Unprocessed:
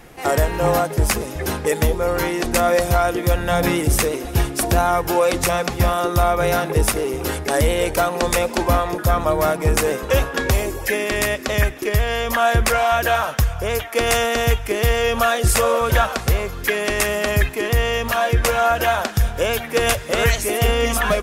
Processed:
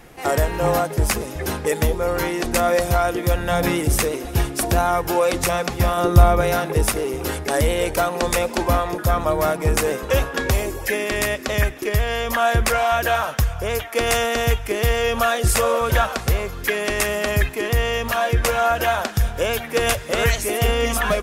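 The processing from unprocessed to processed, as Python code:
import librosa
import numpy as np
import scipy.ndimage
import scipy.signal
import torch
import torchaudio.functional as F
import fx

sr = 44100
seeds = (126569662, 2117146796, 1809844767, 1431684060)

y = fx.low_shelf(x, sr, hz=320.0, db=10.5, at=(5.97, 6.41))
y = y * librosa.db_to_amplitude(-1.5)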